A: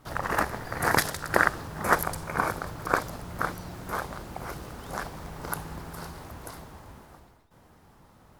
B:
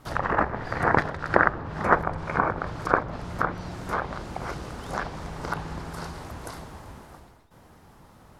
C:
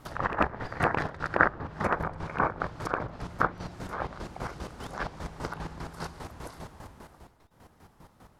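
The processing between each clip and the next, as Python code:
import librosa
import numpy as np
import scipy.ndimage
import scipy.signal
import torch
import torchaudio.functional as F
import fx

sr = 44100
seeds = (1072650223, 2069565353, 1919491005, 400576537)

y1 = fx.env_lowpass_down(x, sr, base_hz=1600.0, full_db=-25.0)
y1 = F.gain(torch.from_numpy(y1), 4.0).numpy()
y2 = fx.rattle_buzz(y1, sr, strikes_db=-24.0, level_db=-17.0)
y2 = fx.chopper(y2, sr, hz=5.0, depth_pct=65, duty_pct=35)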